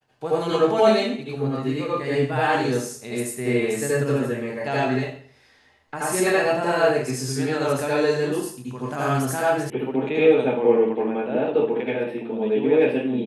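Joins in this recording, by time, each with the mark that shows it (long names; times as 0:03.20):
0:09.70: cut off before it has died away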